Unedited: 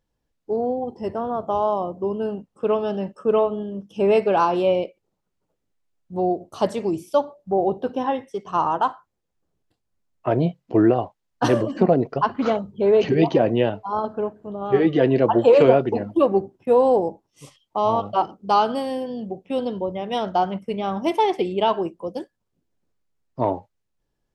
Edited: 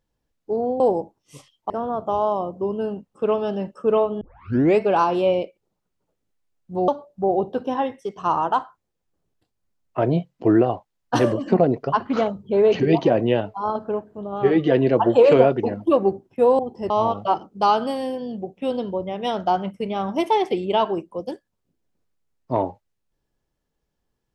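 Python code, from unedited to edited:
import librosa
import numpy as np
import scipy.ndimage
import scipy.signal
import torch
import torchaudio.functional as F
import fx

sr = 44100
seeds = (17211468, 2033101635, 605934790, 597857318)

y = fx.edit(x, sr, fx.swap(start_s=0.8, length_s=0.31, other_s=16.88, other_length_s=0.9),
    fx.tape_start(start_s=3.62, length_s=0.58),
    fx.cut(start_s=6.29, length_s=0.88), tone=tone)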